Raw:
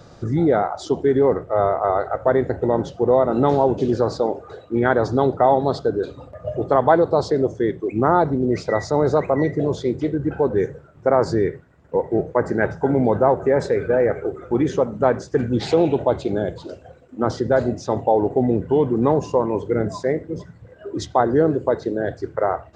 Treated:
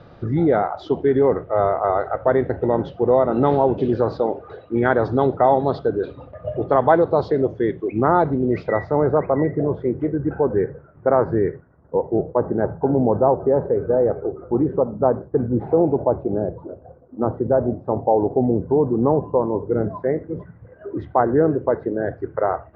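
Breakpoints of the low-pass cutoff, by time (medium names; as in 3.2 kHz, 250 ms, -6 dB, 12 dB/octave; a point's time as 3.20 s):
low-pass 24 dB/octave
8.53 s 3.5 kHz
9.14 s 1.8 kHz
11.50 s 1.8 kHz
12.05 s 1.1 kHz
19.55 s 1.1 kHz
20.23 s 1.9 kHz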